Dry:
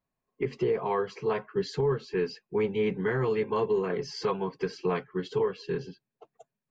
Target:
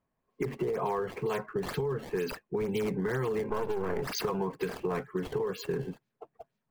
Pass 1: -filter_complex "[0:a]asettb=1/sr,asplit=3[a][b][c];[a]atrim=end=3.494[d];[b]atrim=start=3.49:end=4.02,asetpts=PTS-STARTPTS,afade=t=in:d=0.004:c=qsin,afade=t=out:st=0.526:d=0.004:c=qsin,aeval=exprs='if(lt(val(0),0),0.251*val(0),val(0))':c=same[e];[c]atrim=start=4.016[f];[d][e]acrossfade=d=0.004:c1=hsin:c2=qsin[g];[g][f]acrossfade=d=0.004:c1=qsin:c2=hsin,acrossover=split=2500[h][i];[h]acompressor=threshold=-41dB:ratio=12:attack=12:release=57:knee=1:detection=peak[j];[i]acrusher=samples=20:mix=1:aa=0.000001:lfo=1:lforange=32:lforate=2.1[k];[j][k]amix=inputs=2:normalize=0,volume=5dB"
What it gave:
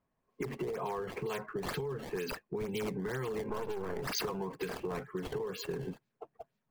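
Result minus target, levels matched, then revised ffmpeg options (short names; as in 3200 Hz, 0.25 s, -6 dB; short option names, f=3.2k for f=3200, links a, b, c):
compressor: peak gain reduction +6 dB
-filter_complex "[0:a]asettb=1/sr,asplit=3[a][b][c];[a]atrim=end=3.494[d];[b]atrim=start=3.49:end=4.02,asetpts=PTS-STARTPTS,afade=t=in:d=0.004:c=qsin,afade=t=out:st=0.526:d=0.004:c=qsin,aeval=exprs='if(lt(val(0),0),0.251*val(0),val(0))':c=same[e];[c]atrim=start=4.016[f];[d][e]acrossfade=d=0.004:c1=hsin:c2=qsin[g];[g][f]acrossfade=d=0.004:c1=qsin:c2=hsin,acrossover=split=2500[h][i];[h]acompressor=threshold=-34.5dB:ratio=12:attack=12:release=57:knee=1:detection=peak[j];[i]acrusher=samples=20:mix=1:aa=0.000001:lfo=1:lforange=32:lforate=2.1[k];[j][k]amix=inputs=2:normalize=0,volume=5dB"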